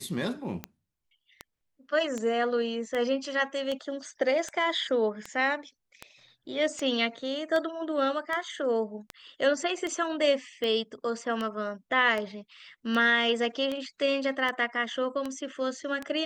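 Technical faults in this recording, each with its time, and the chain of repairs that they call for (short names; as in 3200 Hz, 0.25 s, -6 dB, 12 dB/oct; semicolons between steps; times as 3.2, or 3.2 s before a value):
tick 78 rpm -19 dBFS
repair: de-click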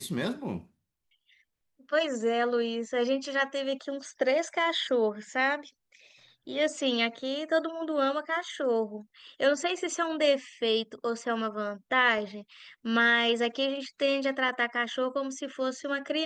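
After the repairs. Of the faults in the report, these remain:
none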